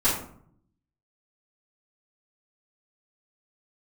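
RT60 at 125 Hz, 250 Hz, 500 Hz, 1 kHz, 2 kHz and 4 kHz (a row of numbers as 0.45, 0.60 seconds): 1.1, 0.90, 0.65, 0.55, 0.45, 0.30 seconds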